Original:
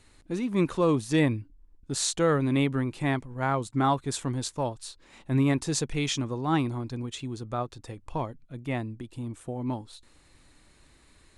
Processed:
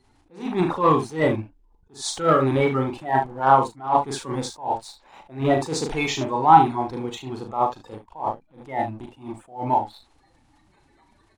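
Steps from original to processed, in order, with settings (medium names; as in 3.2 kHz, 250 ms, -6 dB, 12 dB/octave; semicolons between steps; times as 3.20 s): coarse spectral quantiser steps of 30 dB; low-pass 3.1 kHz 6 dB/octave; bass shelf 310 Hz -6 dB; early reflections 38 ms -6 dB, 74 ms -11 dB; waveshaping leveller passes 1; peaking EQ 830 Hz +14.5 dB 0.63 oct; attacks held to a fixed rise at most 170 dB/s; trim +2.5 dB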